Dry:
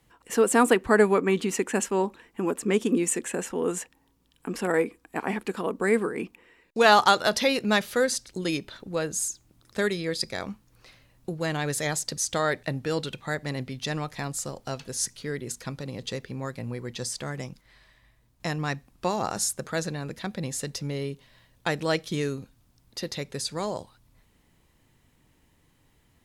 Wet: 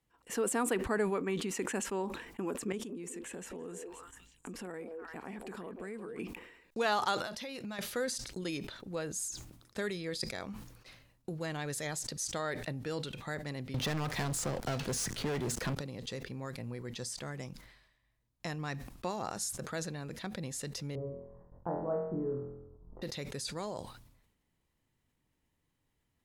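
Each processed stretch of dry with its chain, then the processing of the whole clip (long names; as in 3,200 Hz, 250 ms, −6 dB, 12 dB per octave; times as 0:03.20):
0:02.72–0:06.19: low-shelf EQ 200 Hz +8 dB + echo through a band-pass that steps 173 ms, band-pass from 490 Hz, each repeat 1.4 octaves, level −6 dB + downward compressor 3 to 1, threshold −38 dBFS
0:07.18–0:07.79: notch filter 430 Hz, Q 7.1 + downward compressor 10 to 1, threshold −31 dBFS
0:13.74–0:15.75: high-shelf EQ 3,000 Hz −10 dB + leveller curve on the samples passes 5 + multiband upward and downward compressor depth 40%
0:20.95–0:23.02: Butterworth low-pass 1,100 Hz + low-shelf EQ 63 Hz +11 dB + flutter between parallel walls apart 4 metres, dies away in 0.72 s
whole clip: downward compressor 1.5 to 1, threshold −52 dBFS; noise gate −54 dBFS, range −16 dB; level that may fall only so fast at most 64 dB per second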